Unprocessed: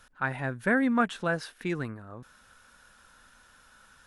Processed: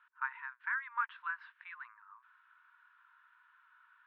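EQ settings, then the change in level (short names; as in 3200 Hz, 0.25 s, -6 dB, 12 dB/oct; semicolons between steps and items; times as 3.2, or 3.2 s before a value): brick-wall FIR high-pass 900 Hz; LPF 2700 Hz 12 dB/oct; air absorption 480 m; -2.5 dB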